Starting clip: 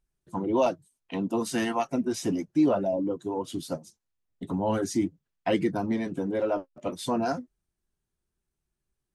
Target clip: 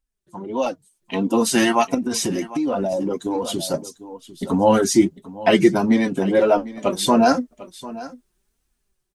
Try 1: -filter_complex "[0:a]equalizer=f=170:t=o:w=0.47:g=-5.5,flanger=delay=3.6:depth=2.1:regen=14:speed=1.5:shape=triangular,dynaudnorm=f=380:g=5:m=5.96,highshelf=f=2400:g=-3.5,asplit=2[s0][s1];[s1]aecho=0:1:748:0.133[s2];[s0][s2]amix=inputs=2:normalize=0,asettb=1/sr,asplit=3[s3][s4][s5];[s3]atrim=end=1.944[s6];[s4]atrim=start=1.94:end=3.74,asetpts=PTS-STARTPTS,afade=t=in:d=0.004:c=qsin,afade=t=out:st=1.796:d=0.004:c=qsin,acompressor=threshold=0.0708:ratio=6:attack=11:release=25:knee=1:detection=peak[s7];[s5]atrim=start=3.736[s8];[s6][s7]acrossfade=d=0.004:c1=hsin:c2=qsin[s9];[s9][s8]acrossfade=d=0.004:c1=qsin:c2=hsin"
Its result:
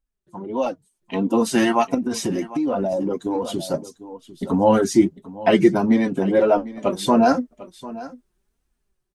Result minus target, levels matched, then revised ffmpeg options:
4 kHz band -4.5 dB
-filter_complex "[0:a]equalizer=f=170:t=o:w=0.47:g=-5.5,flanger=delay=3.6:depth=2.1:regen=14:speed=1.5:shape=triangular,dynaudnorm=f=380:g=5:m=5.96,highshelf=f=2400:g=4,asplit=2[s0][s1];[s1]aecho=0:1:748:0.133[s2];[s0][s2]amix=inputs=2:normalize=0,asettb=1/sr,asplit=3[s3][s4][s5];[s3]atrim=end=1.944[s6];[s4]atrim=start=1.94:end=3.74,asetpts=PTS-STARTPTS,afade=t=in:d=0.004:c=qsin,afade=t=out:st=1.796:d=0.004:c=qsin,acompressor=threshold=0.0708:ratio=6:attack=11:release=25:knee=1:detection=peak[s7];[s5]atrim=start=3.736[s8];[s6][s7]acrossfade=d=0.004:c1=hsin:c2=qsin[s9];[s9][s8]acrossfade=d=0.004:c1=qsin:c2=hsin"

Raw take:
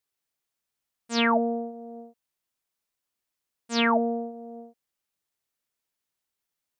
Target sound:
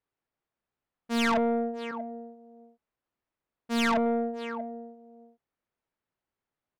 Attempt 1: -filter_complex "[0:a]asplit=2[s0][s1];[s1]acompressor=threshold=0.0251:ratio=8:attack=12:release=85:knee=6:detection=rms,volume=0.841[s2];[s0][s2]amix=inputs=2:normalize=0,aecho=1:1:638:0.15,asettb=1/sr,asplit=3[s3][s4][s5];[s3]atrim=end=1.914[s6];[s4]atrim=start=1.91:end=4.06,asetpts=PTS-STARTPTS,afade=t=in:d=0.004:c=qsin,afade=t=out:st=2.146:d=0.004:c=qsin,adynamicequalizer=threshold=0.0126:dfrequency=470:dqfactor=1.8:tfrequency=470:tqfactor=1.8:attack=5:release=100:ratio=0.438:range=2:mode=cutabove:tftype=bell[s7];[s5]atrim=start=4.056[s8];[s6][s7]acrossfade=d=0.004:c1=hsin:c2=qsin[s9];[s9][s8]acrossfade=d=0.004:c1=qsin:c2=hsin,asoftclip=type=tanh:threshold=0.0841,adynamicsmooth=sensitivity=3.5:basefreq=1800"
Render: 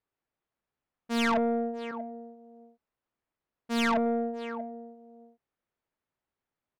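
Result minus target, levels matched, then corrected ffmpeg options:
compression: peak gain reduction +9 dB
-filter_complex "[0:a]asplit=2[s0][s1];[s1]acompressor=threshold=0.0841:ratio=8:attack=12:release=85:knee=6:detection=rms,volume=0.841[s2];[s0][s2]amix=inputs=2:normalize=0,aecho=1:1:638:0.15,asettb=1/sr,asplit=3[s3][s4][s5];[s3]atrim=end=1.914[s6];[s4]atrim=start=1.91:end=4.06,asetpts=PTS-STARTPTS,afade=t=in:d=0.004:c=qsin,afade=t=out:st=2.146:d=0.004:c=qsin,adynamicequalizer=threshold=0.0126:dfrequency=470:dqfactor=1.8:tfrequency=470:tqfactor=1.8:attack=5:release=100:ratio=0.438:range=2:mode=cutabove:tftype=bell[s7];[s5]atrim=start=4.056[s8];[s6][s7]acrossfade=d=0.004:c1=hsin:c2=qsin[s9];[s9][s8]acrossfade=d=0.004:c1=qsin:c2=hsin,asoftclip=type=tanh:threshold=0.0841,adynamicsmooth=sensitivity=3.5:basefreq=1800"

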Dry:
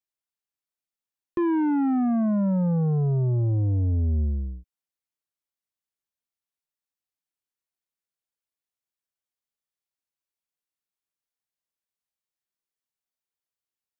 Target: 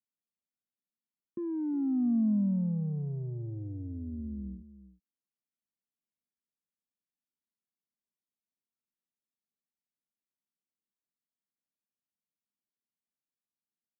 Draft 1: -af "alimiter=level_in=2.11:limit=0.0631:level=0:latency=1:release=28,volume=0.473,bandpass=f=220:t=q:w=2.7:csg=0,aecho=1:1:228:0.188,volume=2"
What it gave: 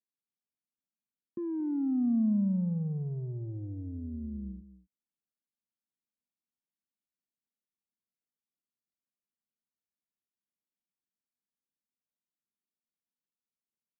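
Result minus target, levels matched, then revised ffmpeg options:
echo 129 ms early
-af "alimiter=level_in=2.11:limit=0.0631:level=0:latency=1:release=28,volume=0.473,bandpass=f=220:t=q:w=2.7:csg=0,aecho=1:1:357:0.188,volume=2"

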